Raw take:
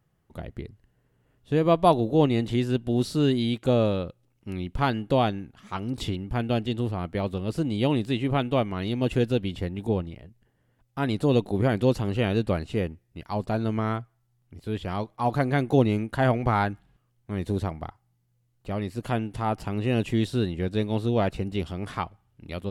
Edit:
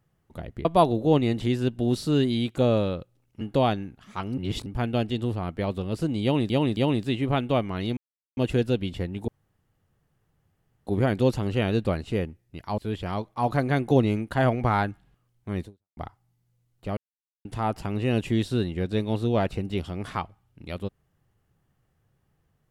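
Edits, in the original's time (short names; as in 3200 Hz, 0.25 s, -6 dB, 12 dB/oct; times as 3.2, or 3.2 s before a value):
0.65–1.73 cut
4.49–4.97 cut
5.94–6.22 reverse
7.79–8.06 loop, 3 plays
8.99 insert silence 0.40 s
9.9–11.49 room tone
13.4–14.6 cut
17.45–17.79 fade out exponential
18.79–19.27 mute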